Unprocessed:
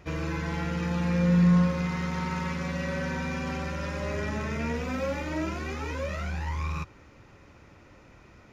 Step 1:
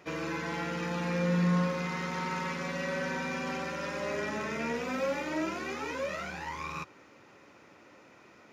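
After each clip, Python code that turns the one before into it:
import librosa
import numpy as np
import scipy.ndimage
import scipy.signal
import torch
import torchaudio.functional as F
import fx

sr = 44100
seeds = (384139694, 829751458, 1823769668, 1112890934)

y = scipy.signal.sosfilt(scipy.signal.butter(2, 250.0, 'highpass', fs=sr, output='sos'), x)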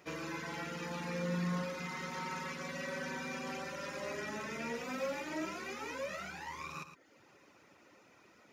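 y = fx.dereverb_blind(x, sr, rt60_s=0.66)
y = fx.high_shelf(y, sr, hz=5700.0, db=8.0)
y = y + 10.0 ** (-10.5 / 20.0) * np.pad(y, (int(112 * sr / 1000.0), 0))[:len(y)]
y = y * 10.0 ** (-5.5 / 20.0)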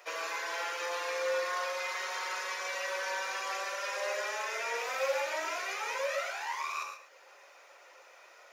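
y = scipy.signal.sosfilt(scipy.signal.butter(6, 490.0, 'highpass', fs=sr, output='sos'), x)
y = fx.rev_gated(y, sr, seeds[0], gate_ms=160, shape='flat', drr_db=3.0)
y = y * 10.0 ** (6.5 / 20.0)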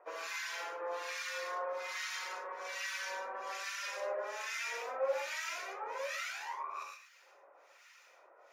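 y = fx.harmonic_tremolo(x, sr, hz=1.2, depth_pct=100, crossover_hz=1300.0)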